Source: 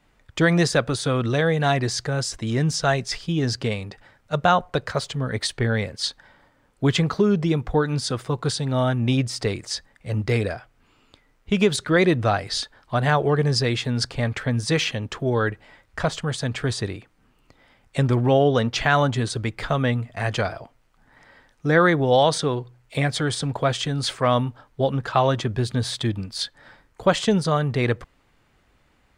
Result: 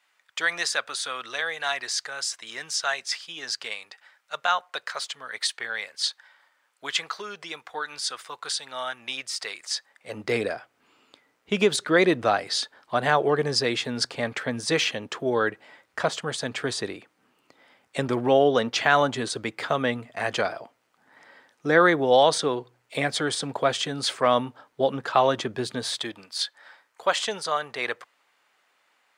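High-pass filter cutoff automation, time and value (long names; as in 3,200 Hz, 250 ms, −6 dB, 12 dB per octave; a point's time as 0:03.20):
0:09.60 1,200 Hz
0:10.35 280 Hz
0:25.68 280 Hz
0:26.31 740 Hz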